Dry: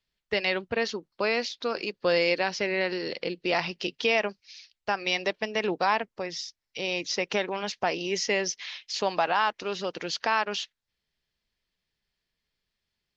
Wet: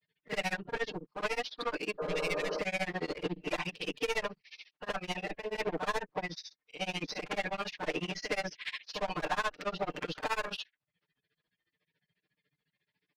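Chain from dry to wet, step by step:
spectral magnitudes quantised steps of 30 dB
in parallel at +1 dB: downward compressor, threshold −33 dBFS, peak gain reduction 13 dB
on the sum: band-pass filter 140–2,300 Hz
asymmetric clip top −30.5 dBFS
echo ahead of the sound 44 ms −12.5 dB
soft clipping −28 dBFS, distortion −7 dB
comb filter 6.6 ms, depth 99%
granular cloud 76 ms, grains 14 per second, spray 22 ms, pitch spread up and down by 0 semitones
healed spectral selection 0:02.02–0:02.56, 280–1,700 Hz after

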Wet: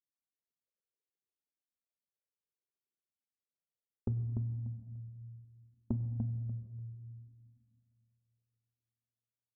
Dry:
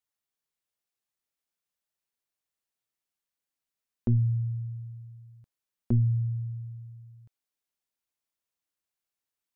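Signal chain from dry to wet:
spectral envelope exaggerated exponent 3
high-pass filter 150 Hz 12 dB per octave
noise gate −44 dBFS, range −12 dB
Butterworth low-pass 560 Hz
downward compressor 6 to 1, threshold −41 dBFS, peak gain reduction 14 dB
repeating echo 294 ms, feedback 22%, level −7 dB
convolution reverb RT60 2.1 s, pre-delay 6 ms, DRR 11 dB
flanger whose copies keep moving one way falling 0.68 Hz
level +13 dB

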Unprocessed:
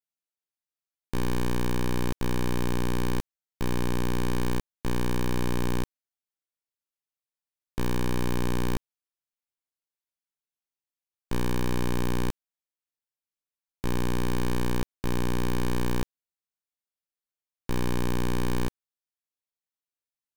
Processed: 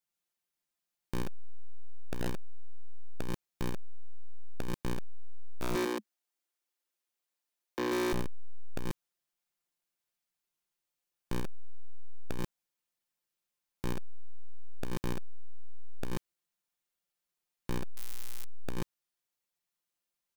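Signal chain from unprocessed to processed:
0:05.61–0:08.13: Butterworth high-pass 210 Hz 96 dB per octave
0:17.96–0:18.45: high-shelf EQ 11,000 Hz +9 dB
comb filter 5.7 ms, depth 71%
multi-tap delay 85/137 ms −14/−4.5 dB
gain into a clipping stage and back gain 30.5 dB
level +2.5 dB

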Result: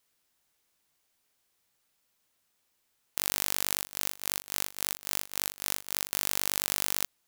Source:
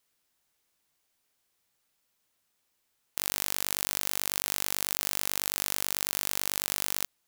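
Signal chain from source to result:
0:03.74–0:06.12: amplitude modulation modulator 250 Hz, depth 90%
level +1 dB

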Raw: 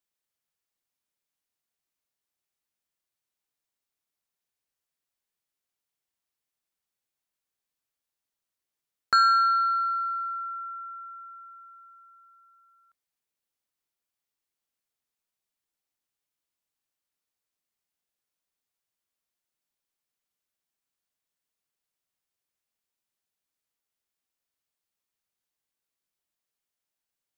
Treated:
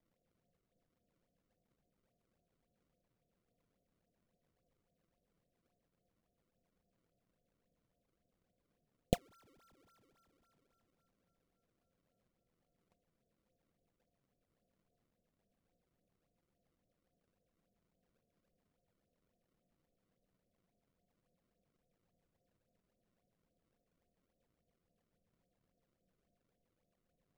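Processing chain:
low-shelf EQ 67 Hz +10.5 dB
in parallel at −1.5 dB: brickwall limiter −24 dBFS, peak gain reduction 10 dB
on the sum: Chebyshev low-pass with heavy ripple 730 Hz, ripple 9 dB
sample-and-hold swept by an LFO 30×, swing 160% 3.6 Hz
level +17 dB

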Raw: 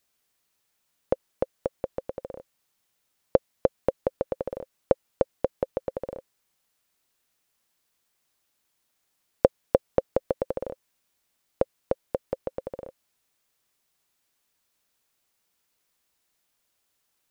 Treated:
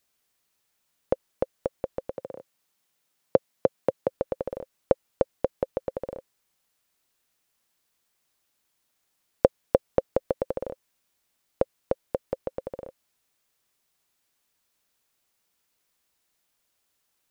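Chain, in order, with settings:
0:02.11–0:04.11: high-pass filter 110 Hz 24 dB per octave

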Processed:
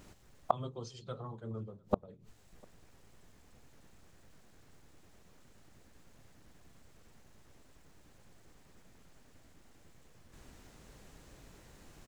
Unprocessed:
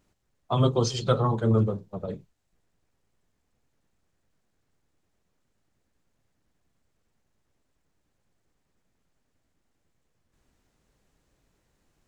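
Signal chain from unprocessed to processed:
gate with flip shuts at −26 dBFS, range −34 dB
slap from a distant wall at 120 metres, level −29 dB
level +14 dB

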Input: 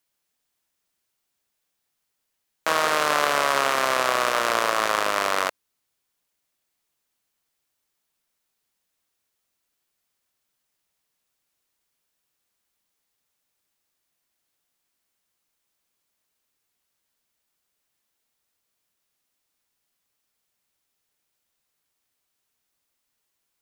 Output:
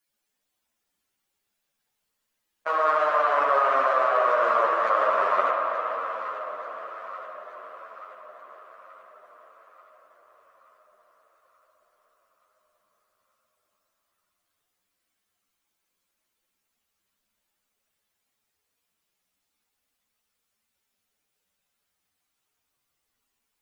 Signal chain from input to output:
expanding power law on the bin magnitudes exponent 2.2
on a send: delay that swaps between a low-pass and a high-pass 440 ms, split 900 Hz, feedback 74%, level −8.5 dB
on the sum: spring reverb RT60 3.3 s, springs 59 ms, chirp 60 ms, DRR 1 dB
string-ensemble chorus
level +1 dB

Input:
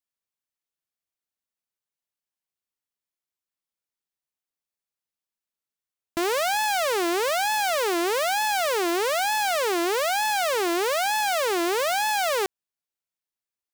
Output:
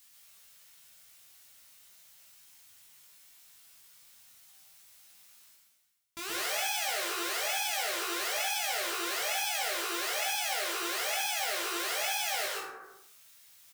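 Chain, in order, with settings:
in parallel at −4.5 dB: wrap-around overflow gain 26.5 dB
on the sum: brickwall limiter −26.5 dBFS, peak gain reduction 8 dB
guitar amp tone stack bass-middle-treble 5-5-5
double-tracking delay 18 ms −2 dB
dense smooth reverb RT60 0.54 s, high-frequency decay 0.5×, pre-delay 105 ms, DRR −3 dB
reversed playback
upward compression, threshold −41 dBFS
reversed playback
flutter between parallel walls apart 8.8 metres, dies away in 0.25 s
level +4.5 dB

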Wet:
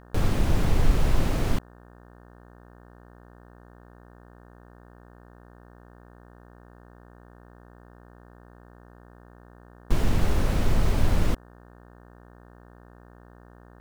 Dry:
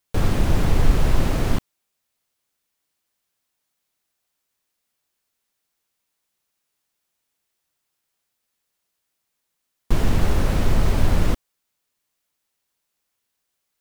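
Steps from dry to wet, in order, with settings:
hum with harmonics 60 Hz, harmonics 30, −46 dBFS −4 dB per octave
level −4 dB

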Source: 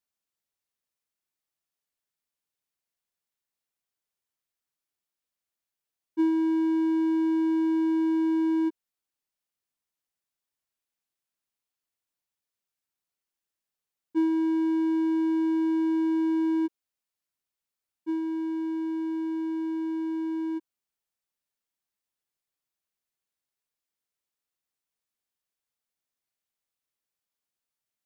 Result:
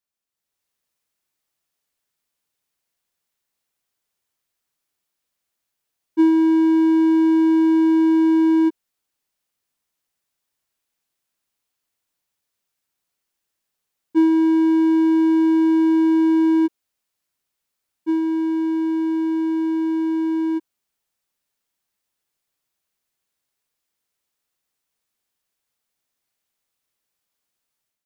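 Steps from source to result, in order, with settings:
automatic gain control gain up to 9 dB

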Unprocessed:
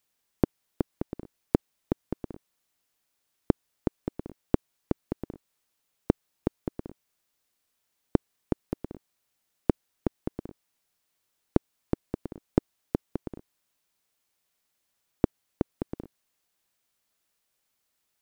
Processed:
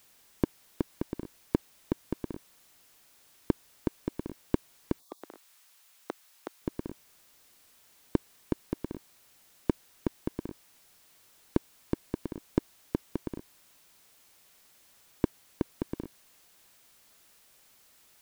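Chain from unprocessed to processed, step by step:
0:05.00–0:05.22: time-frequency box erased 1,200–3,300 Hz
0:05.02–0:06.62: high-pass filter 910 Hz 12 dB per octave
power curve on the samples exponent 0.7
level −5 dB

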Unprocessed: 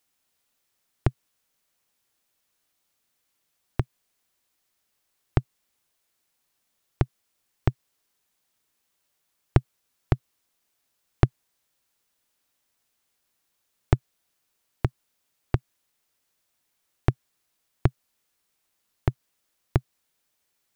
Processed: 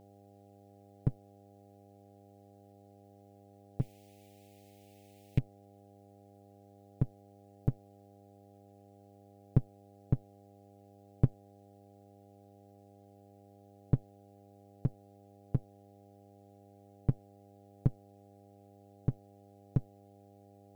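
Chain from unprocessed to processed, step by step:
lower of the sound and its delayed copy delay 7 ms
0:03.81–0:05.39: high shelf with overshoot 1,700 Hz +11.5 dB, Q 3
hum with harmonics 100 Hz, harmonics 8, −55 dBFS −2 dB per octave
level −3.5 dB

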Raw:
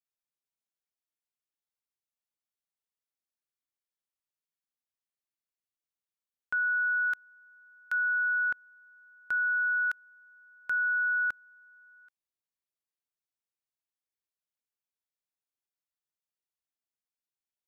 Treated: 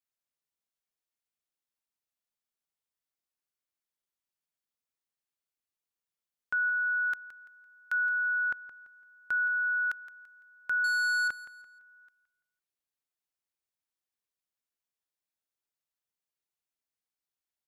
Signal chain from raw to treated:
0:10.84–0:11.28: leveller curve on the samples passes 2
repeating echo 169 ms, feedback 33%, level −14.5 dB

